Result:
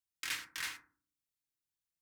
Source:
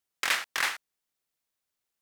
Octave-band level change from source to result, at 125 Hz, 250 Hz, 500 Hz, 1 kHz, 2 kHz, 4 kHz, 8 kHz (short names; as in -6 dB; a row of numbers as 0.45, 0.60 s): n/a, -8.5 dB, -19.5 dB, -16.5 dB, -12.0 dB, -10.0 dB, -8.0 dB